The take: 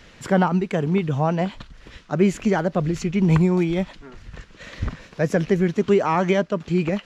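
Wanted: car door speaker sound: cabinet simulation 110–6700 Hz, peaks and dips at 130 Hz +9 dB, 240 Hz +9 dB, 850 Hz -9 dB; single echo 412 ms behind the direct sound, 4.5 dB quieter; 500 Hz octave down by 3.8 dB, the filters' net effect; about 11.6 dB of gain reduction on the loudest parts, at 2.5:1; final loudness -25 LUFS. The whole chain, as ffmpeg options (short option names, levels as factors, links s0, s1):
-af "equalizer=f=500:t=o:g=-5.5,acompressor=threshold=0.0224:ratio=2.5,highpass=110,equalizer=f=130:t=q:w=4:g=9,equalizer=f=240:t=q:w=4:g=9,equalizer=f=850:t=q:w=4:g=-9,lowpass=f=6700:w=0.5412,lowpass=f=6700:w=1.3066,aecho=1:1:412:0.596,volume=1.78"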